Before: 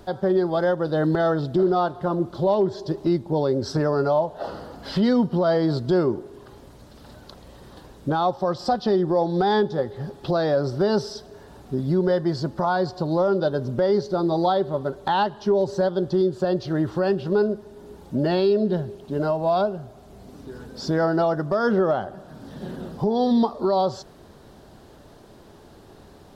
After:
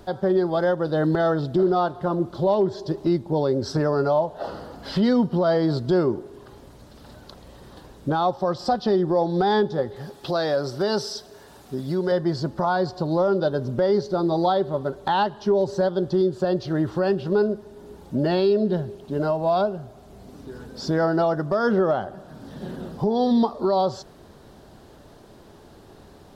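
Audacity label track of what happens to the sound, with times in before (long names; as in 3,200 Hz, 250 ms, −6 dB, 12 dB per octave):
9.960000	12.120000	spectral tilt +2 dB per octave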